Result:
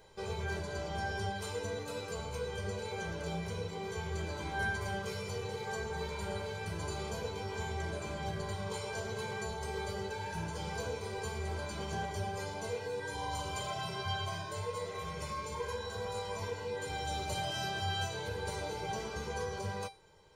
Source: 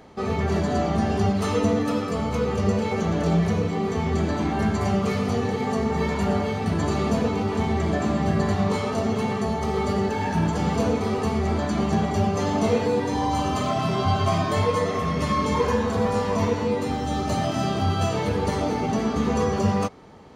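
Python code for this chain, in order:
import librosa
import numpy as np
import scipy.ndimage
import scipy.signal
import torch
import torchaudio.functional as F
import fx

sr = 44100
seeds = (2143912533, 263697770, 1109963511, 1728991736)

y = fx.high_shelf(x, sr, hz=3400.0, db=8.5)
y = y + 0.96 * np.pad(y, (int(2.0 * sr / 1000.0), 0))[:len(y)]
y = fx.rider(y, sr, range_db=10, speed_s=0.5)
y = fx.comb_fb(y, sr, f0_hz=790.0, decay_s=0.26, harmonics='all', damping=0.0, mix_pct=90)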